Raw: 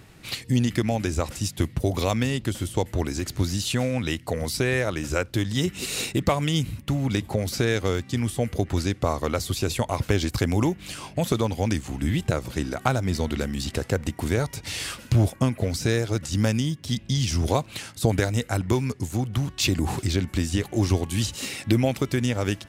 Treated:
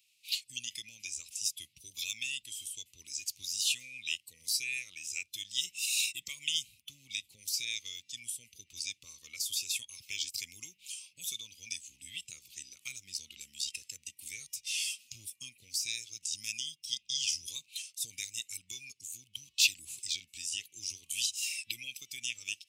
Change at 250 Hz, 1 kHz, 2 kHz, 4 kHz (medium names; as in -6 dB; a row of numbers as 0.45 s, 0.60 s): under -40 dB, under -40 dB, -8.0 dB, -2.0 dB